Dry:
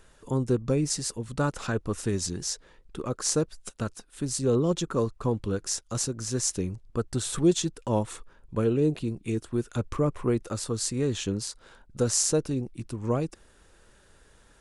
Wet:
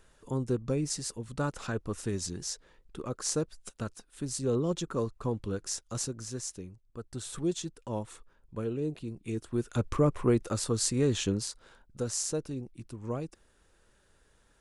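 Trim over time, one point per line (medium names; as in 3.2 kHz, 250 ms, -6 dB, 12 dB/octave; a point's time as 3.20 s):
6.10 s -5 dB
6.83 s -16.5 dB
7.23 s -9 dB
9.01 s -9 dB
9.86 s +0.5 dB
11.25 s +0.5 dB
12.03 s -8 dB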